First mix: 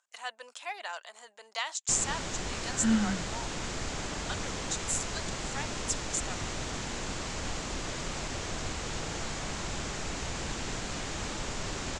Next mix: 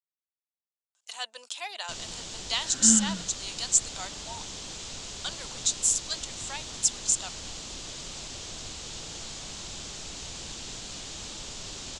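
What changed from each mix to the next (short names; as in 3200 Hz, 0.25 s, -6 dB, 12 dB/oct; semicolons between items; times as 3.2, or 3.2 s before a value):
speech: entry +0.95 s; first sound -8.0 dB; master: add resonant high shelf 2600 Hz +8 dB, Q 1.5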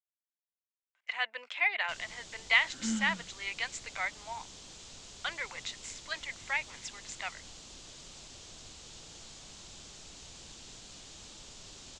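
speech: add synth low-pass 2100 Hz, resonance Q 7.5; first sound -10.5 dB; second sound -8.0 dB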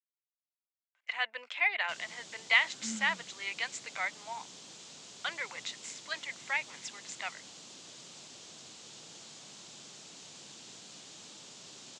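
second sound -7.5 dB; master: add HPF 140 Hz 24 dB/oct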